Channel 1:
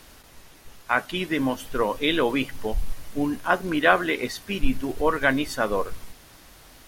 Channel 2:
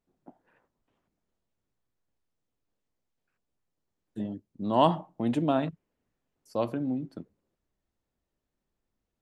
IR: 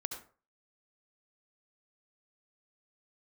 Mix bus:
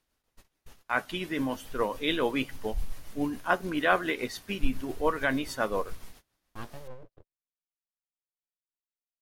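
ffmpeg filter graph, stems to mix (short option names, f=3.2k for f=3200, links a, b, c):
-filter_complex "[0:a]volume=-4dB,asplit=2[a][b];[1:a]alimiter=limit=-17.5dB:level=0:latency=1,aeval=exprs='abs(val(0))':c=same,volume=-9dB[c];[b]apad=whole_len=406345[d];[c][d]sidechaincompress=threshold=-43dB:ratio=8:attack=16:release=302[e];[a][e]amix=inputs=2:normalize=0,agate=range=-24dB:threshold=-47dB:ratio=16:detection=peak,tremolo=f=7.1:d=0.35"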